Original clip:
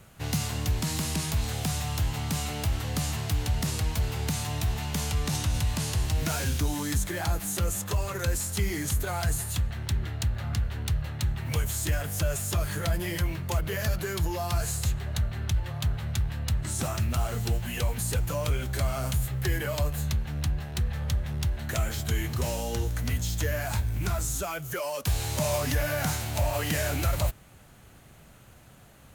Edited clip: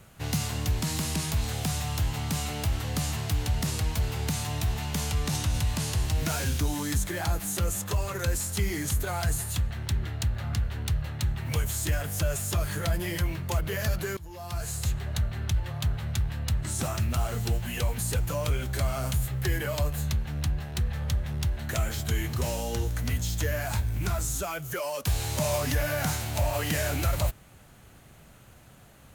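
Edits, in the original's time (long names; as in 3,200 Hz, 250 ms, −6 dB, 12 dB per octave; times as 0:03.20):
0:14.17–0:14.96: fade in, from −22.5 dB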